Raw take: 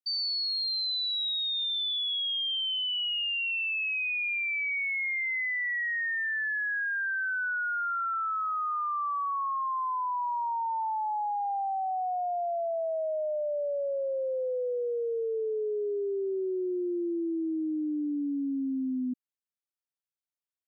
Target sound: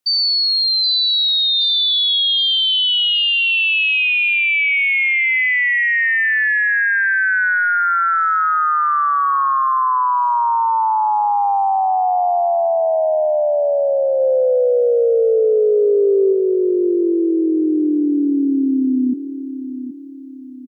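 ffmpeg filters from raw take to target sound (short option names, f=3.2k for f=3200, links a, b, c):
-filter_complex "[0:a]asplit=3[a][b][c];[a]afade=t=out:st=14.19:d=0.02[d];[b]equalizer=f=99:t=o:w=2.2:g=14,afade=t=in:st=14.19:d=0.02,afade=t=out:st=16.32:d=0.02[e];[c]afade=t=in:st=16.32:d=0.02[f];[d][e][f]amix=inputs=3:normalize=0,acontrast=68,aecho=1:1:772|1544|2316|3088:0.282|0.116|0.0474|0.0194,volume=7.5dB"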